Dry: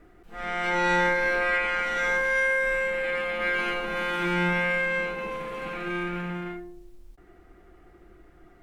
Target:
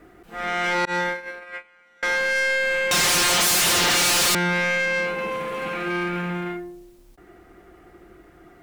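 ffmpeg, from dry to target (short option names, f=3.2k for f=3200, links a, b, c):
-filter_complex "[0:a]asettb=1/sr,asplit=3[a][b][c];[a]atrim=end=2.914[d];[b]atrim=start=2.91:end=4.35,asetpts=PTS-STARTPTS,afade=t=in:d=0.004:c=qsin,afade=t=out:st=1.436:d=0.004:c=qsin,aeval=exprs='0.158*sin(PI/2*8.91*val(0)/0.158)':c=same[e];[c]atrim=start=4.346[f];[d][e]acrossfade=d=0.004:c1=hsin:c2=qsin[g];[g][f]acrossfade=d=0.004:c1=qsin:c2=hsin,highpass=f=99:p=1,asettb=1/sr,asplit=3[h][i][j];[h]atrim=end=0.854[k];[i]atrim=start=0.85:end=2.03,asetpts=PTS-STARTPTS,afade=t=in:d=0.004:c=qsin,afade=t=out:st=1.176:d=0.004:c=qsin,agate=range=-35dB:threshold=-21dB:ratio=16:detection=peak[l];[j]atrim=start=2.026[m];[k][l]acrossfade=d=0.004:c1=hsin:c2=qsin[n];[n][m]acrossfade=d=0.004:c1=qsin:c2=hsin,highshelf=f=7.6k:g=4.5,asoftclip=type=tanh:threshold=-24.5dB,volume=6.5dB"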